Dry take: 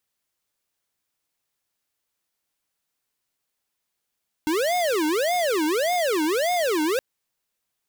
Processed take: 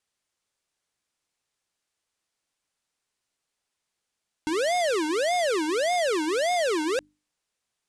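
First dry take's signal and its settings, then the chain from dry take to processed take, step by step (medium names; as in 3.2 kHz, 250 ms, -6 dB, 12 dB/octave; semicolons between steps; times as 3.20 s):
siren wail 303–721 Hz 1.7 per s square -22.5 dBFS 2.52 s
low-pass 9.8 kHz 24 dB/octave; hum notches 50/100/150/200/250/300 Hz; peak limiter -21 dBFS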